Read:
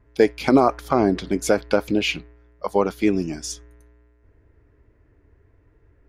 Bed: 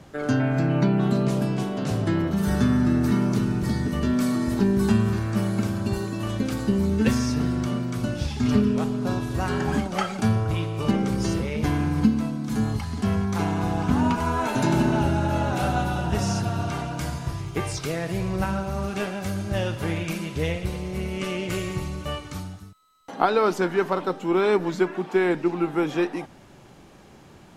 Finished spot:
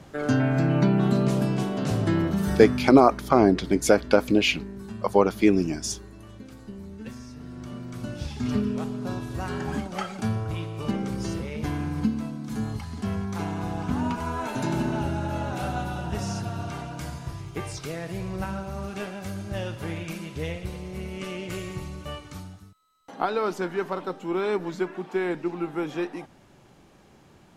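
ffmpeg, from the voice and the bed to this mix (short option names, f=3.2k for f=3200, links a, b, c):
-filter_complex "[0:a]adelay=2400,volume=0.5dB[a];[1:a]volume=12.5dB,afade=t=out:st=2.24:d=0.8:silence=0.125893,afade=t=in:st=7.41:d=0.86:silence=0.237137[b];[a][b]amix=inputs=2:normalize=0"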